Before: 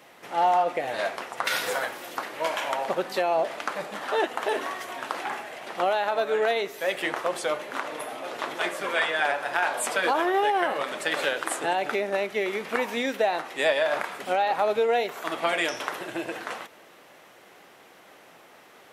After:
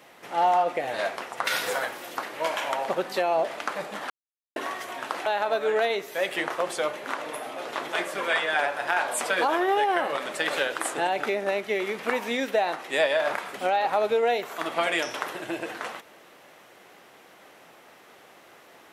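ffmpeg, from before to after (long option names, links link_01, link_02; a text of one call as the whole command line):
ffmpeg -i in.wav -filter_complex "[0:a]asplit=4[link_01][link_02][link_03][link_04];[link_01]atrim=end=4.1,asetpts=PTS-STARTPTS,afade=type=out:start_time=4.096:duration=0.004:curve=hsin[link_05];[link_02]atrim=start=4.1:end=4.56,asetpts=PTS-STARTPTS,volume=0[link_06];[link_03]atrim=start=4.56:end=5.262,asetpts=PTS-STARTPTS,afade=type=in:duration=0.004:curve=hsin[link_07];[link_04]atrim=start=5.918[link_08];[link_05][link_06][link_07]concat=n=3:v=0:a=1[link_09];[link_09][link_08]acrossfade=duration=0.004:curve1=hsin:curve2=hsin" out.wav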